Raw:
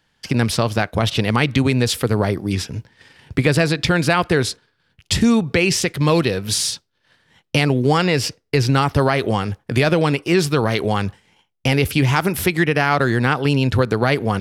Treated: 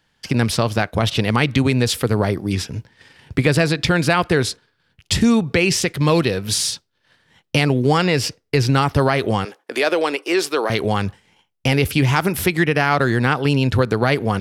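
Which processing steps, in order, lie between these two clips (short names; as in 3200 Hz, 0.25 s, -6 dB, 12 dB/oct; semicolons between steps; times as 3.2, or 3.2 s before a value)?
9.45–10.7 HPF 330 Hz 24 dB/oct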